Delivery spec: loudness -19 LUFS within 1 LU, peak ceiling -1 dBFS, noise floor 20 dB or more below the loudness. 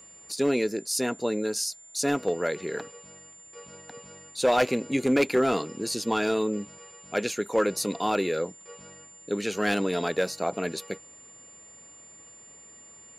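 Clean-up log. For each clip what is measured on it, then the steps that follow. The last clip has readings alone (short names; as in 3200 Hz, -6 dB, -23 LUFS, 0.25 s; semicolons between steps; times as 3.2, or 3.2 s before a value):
clipped 0.4%; flat tops at -15.5 dBFS; steady tone 7200 Hz; tone level -48 dBFS; loudness -27.5 LUFS; peak -15.5 dBFS; loudness target -19.0 LUFS
-> clip repair -15.5 dBFS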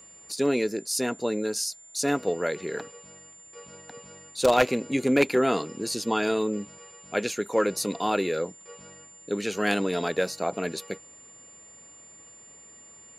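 clipped 0.0%; steady tone 7200 Hz; tone level -48 dBFS
-> notch 7200 Hz, Q 30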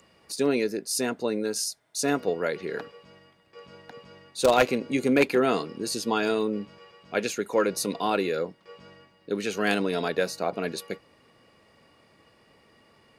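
steady tone none; loudness -27.0 LUFS; peak -6.5 dBFS; loudness target -19.0 LUFS
-> gain +8 dB; limiter -1 dBFS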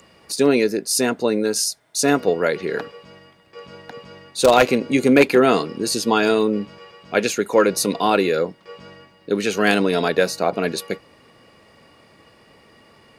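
loudness -19.0 LUFS; peak -1.0 dBFS; noise floor -53 dBFS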